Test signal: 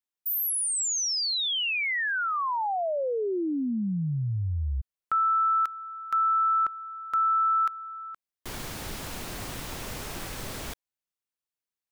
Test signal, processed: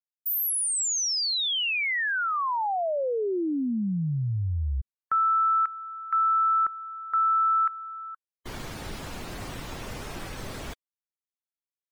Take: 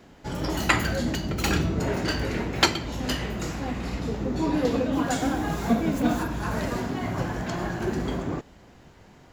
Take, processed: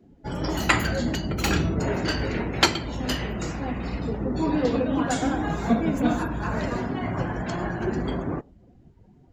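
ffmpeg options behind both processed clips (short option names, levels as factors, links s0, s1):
-af "afftdn=nr=21:nf=-45,volume=1.12"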